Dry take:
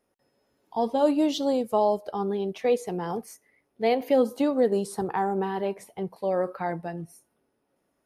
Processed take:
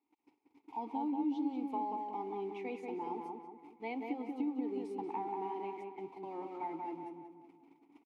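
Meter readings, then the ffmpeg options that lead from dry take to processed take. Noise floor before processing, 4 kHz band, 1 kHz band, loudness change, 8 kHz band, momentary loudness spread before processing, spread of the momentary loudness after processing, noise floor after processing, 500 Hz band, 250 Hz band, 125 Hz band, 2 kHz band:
-75 dBFS, -22.5 dB, -9.0 dB, -13.0 dB, under -25 dB, 12 LU, 11 LU, -77 dBFS, -18.0 dB, -10.0 dB, -21.0 dB, -13.5 dB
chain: -filter_complex "[0:a]aeval=exprs='val(0)+0.5*0.0112*sgn(val(0))':c=same,asplit=3[s0][s1][s2];[s0]bandpass=f=300:t=q:w=8,volume=1[s3];[s1]bandpass=f=870:t=q:w=8,volume=0.501[s4];[s2]bandpass=f=2240:t=q:w=8,volume=0.355[s5];[s3][s4][s5]amix=inputs=3:normalize=0,equalizer=f=180:t=o:w=0.61:g=-10.5,acompressor=threshold=0.0158:ratio=6,agate=range=0.0398:threshold=0.002:ratio=16:detection=peak,asplit=2[s6][s7];[s7]adelay=185,lowpass=f=2100:p=1,volume=0.708,asplit=2[s8][s9];[s9]adelay=185,lowpass=f=2100:p=1,volume=0.47,asplit=2[s10][s11];[s11]adelay=185,lowpass=f=2100:p=1,volume=0.47,asplit=2[s12][s13];[s13]adelay=185,lowpass=f=2100:p=1,volume=0.47,asplit=2[s14][s15];[s15]adelay=185,lowpass=f=2100:p=1,volume=0.47,asplit=2[s16][s17];[s17]adelay=185,lowpass=f=2100:p=1,volume=0.47[s18];[s6][s8][s10][s12][s14][s16][s18]amix=inputs=7:normalize=0,volume=1.19"

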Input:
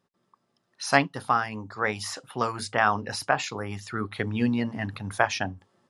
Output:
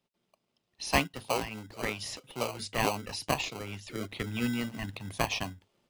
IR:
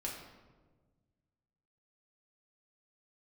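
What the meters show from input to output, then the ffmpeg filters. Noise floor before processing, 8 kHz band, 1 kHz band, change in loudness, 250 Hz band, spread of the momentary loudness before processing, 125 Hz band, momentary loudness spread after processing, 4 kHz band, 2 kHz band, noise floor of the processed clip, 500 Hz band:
-75 dBFS, -2.0 dB, -8.5 dB, -6.0 dB, -5.5 dB, 10 LU, -5.0 dB, 10 LU, -0.5 dB, -7.5 dB, -81 dBFS, -5.0 dB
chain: -filter_complex "[0:a]equalizer=f=2800:w=1.3:g=8.5,acrossover=split=120|1900[s0][s1][s2];[s1]acrusher=samples=25:mix=1:aa=0.000001[s3];[s0][s3][s2]amix=inputs=3:normalize=0,volume=0.473"

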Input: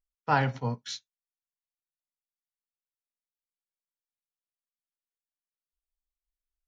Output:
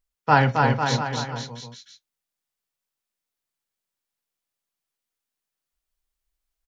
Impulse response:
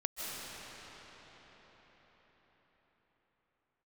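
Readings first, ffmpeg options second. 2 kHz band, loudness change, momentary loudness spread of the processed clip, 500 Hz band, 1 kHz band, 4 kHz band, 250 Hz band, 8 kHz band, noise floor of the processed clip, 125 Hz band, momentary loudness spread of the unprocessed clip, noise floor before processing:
+9.5 dB, +8.0 dB, 16 LU, +9.5 dB, +9.5 dB, +9.5 dB, +9.5 dB, no reading, under -85 dBFS, +9.0 dB, 13 LU, under -85 dBFS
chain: -af "aecho=1:1:270|499.5|694.6|860.4|1001:0.631|0.398|0.251|0.158|0.1,volume=2.37"

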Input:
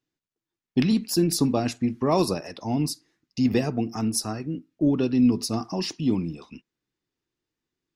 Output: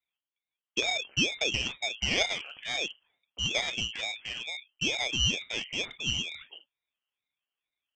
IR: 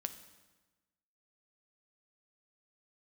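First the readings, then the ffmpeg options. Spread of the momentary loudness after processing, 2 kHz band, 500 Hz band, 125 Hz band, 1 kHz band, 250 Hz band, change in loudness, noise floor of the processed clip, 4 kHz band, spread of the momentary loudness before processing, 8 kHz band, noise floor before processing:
9 LU, +10.5 dB, -11.0 dB, -12.5 dB, -9.0 dB, -20.0 dB, -4.5 dB, under -85 dBFS, +7.0 dB, 10 LU, -2.5 dB, under -85 dBFS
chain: -filter_complex "[1:a]atrim=start_sample=2205,afade=t=out:st=0.16:d=0.01,atrim=end_sample=7497,asetrate=83790,aresample=44100[s0];[0:a][s0]afir=irnorm=-1:irlink=0,acontrast=66,lowpass=f=2700:t=q:w=0.5098,lowpass=f=2700:t=q:w=0.6013,lowpass=f=2700:t=q:w=0.9,lowpass=f=2700:t=q:w=2.563,afreqshift=-3200,aresample=16000,aeval=exprs='clip(val(0),-1,0.0266)':c=same,aresample=44100,aeval=exprs='val(0)*sin(2*PI*400*n/s+400*0.85/2.2*sin(2*PI*2.2*n/s))':c=same,volume=0.841"

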